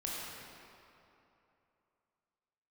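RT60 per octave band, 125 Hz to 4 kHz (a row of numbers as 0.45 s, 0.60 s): 2.8 s, 2.8 s, 2.9 s, 2.9 s, 2.4 s, 1.8 s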